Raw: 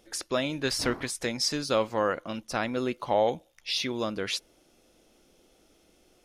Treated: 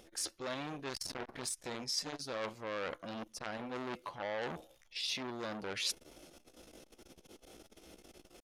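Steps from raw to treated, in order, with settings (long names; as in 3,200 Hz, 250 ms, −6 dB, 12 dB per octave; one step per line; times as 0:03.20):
tempo change 0.74×
reversed playback
downward compressor 5 to 1, threshold −43 dBFS, peak gain reduction 20.5 dB
reversed playback
saturating transformer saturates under 2,300 Hz
level +8 dB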